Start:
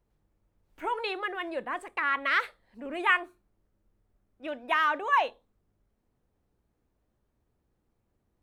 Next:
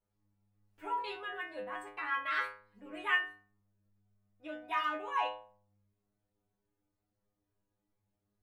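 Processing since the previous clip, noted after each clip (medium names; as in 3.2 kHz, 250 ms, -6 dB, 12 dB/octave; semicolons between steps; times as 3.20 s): inharmonic resonator 100 Hz, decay 0.57 s, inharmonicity 0.002; trim +4.5 dB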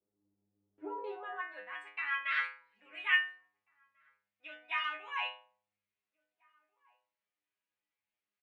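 echo from a far wall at 290 m, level -28 dB; band-pass sweep 350 Hz -> 2.4 kHz, 0.94–1.74 s; trim +7 dB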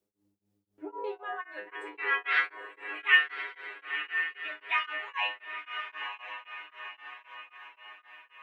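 echo that smears into a reverb 984 ms, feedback 51%, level -6 dB; tremolo of two beating tones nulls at 3.8 Hz; trim +7 dB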